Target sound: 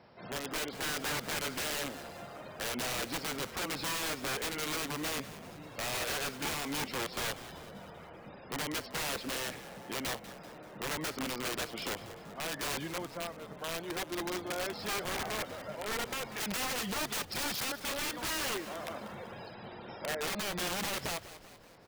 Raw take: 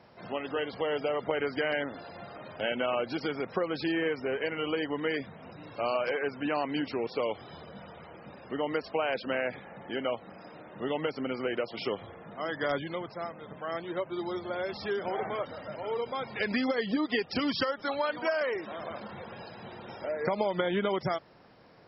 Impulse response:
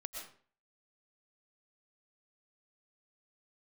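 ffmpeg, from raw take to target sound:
-filter_complex "[0:a]aeval=exprs='(mod(25.1*val(0)+1,2)-1)/25.1':channel_layout=same,asplit=2[link_01][link_02];[link_02]asplit=5[link_03][link_04][link_05][link_06][link_07];[link_03]adelay=193,afreqshift=-52,volume=-15dB[link_08];[link_04]adelay=386,afreqshift=-104,volume=-20.5dB[link_09];[link_05]adelay=579,afreqshift=-156,volume=-26dB[link_10];[link_06]adelay=772,afreqshift=-208,volume=-31.5dB[link_11];[link_07]adelay=965,afreqshift=-260,volume=-37.1dB[link_12];[link_08][link_09][link_10][link_11][link_12]amix=inputs=5:normalize=0[link_13];[link_01][link_13]amix=inputs=2:normalize=0,volume=-2dB"

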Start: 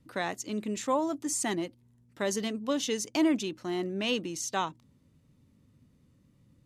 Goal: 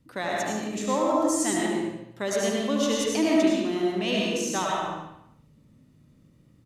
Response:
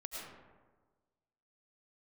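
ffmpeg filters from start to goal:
-filter_complex "[0:a]aecho=1:1:74|148|222|296|370|444:0.422|0.223|0.118|0.0628|0.0333|0.0176[link_01];[1:a]atrim=start_sample=2205,afade=type=out:start_time=0.44:duration=0.01,atrim=end_sample=19845[link_02];[link_01][link_02]afir=irnorm=-1:irlink=0,volume=6dB"

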